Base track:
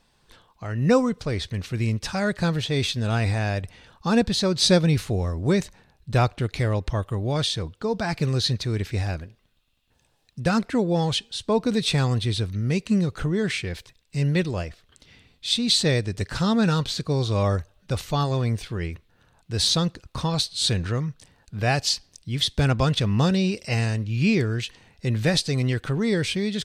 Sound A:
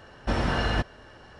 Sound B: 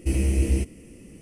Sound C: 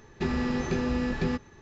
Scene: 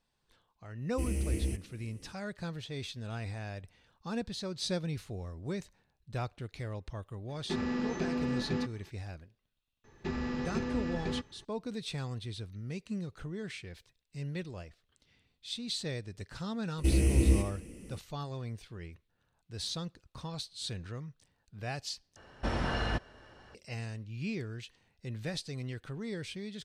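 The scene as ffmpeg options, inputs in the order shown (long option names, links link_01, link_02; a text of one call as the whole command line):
ffmpeg -i bed.wav -i cue0.wav -i cue1.wav -i cue2.wav -filter_complex "[2:a]asplit=2[link_01][link_02];[3:a]asplit=2[link_03][link_04];[0:a]volume=-16dB[link_05];[link_01]crystalizer=i=0.5:c=0[link_06];[link_03]lowshelf=frequency=140:width_type=q:width=1.5:gain=-8.5[link_07];[link_02]aecho=1:1:80|160|240|320|400:0.355|0.145|0.0596|0.0245|0.01[link_08];[link_05]asplit=2[link_09][link_10];[link_09]atrim=end=22.164[link_11];[1:a]atrim=end=1.39,asetpts=PTS-STARTPTS,volume=-6.5dB[link_12];[link_10]atrim=start=23.546[link_13];[link_06]atrim=end=1.21,asetpts=PTS-STARTPTS,volume=-10.5dB,afade=type=in:duration=0.004:curve=hsin,afade=type=out:start_time=1.206:duration=0.004:curve=hsin,adelay=920[link_14];[link_07]atrim=end=1.61,asetpts=PTS-STARTPTS,volume=-6dB,afade=type=in:duration=0.004:curve=hsin,afade=type=out:start_time=1.606:duration=0.004:curve=hsin,adelay=7290[link_15];[link_04]atrim=end=1.61,asetpts=PTS-STARTPTS,volume=-7dB,afade=type=in:duration=0.004:curve=hsin,afade=type=out:start_time=1.606:duration=0.004:curve=hsin,adelay=9840[link_16];[link_08]atrim=end=1.21,asetpts=PTS-STARTPTS,volume=-3dB,afade=type=in:duration=0.004:curve=hsin,afade=type=out:start_time=1.206:duration=0.004:curve=hsin,adelay=16780[link_17];[link_11][link_12]acrossfade=duration=0.004:curve1=hsin:curve2=hsin[link_18];[link_18][link_13]acrossfade=duration=0.004:curve1=hsin:curve2=hsin[link_19];[link_19][link_14][link_15][link_16][link_17]amix=inputs=5:normalize=0" out.wav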